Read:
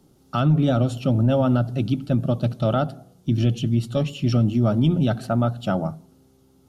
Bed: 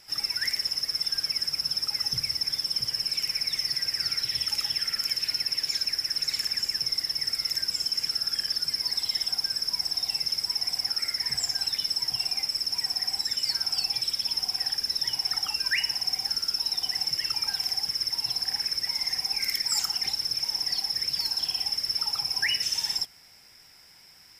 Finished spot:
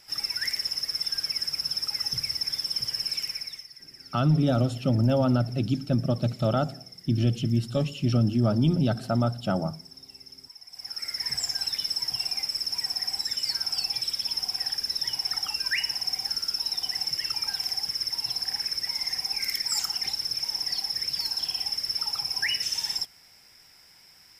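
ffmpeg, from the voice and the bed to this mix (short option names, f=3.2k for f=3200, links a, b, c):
-filter_complex "[0:a]adelay=3800,volume=-3.5dB[a];[1:a]volume=17dB,afade=t=out:st=3.13:d=0.54:silence=0.125893,afade=t=in:st=10.7:d=0.57:silence=0.125893[b];[a][b]amix=inputs=2:normalize=0"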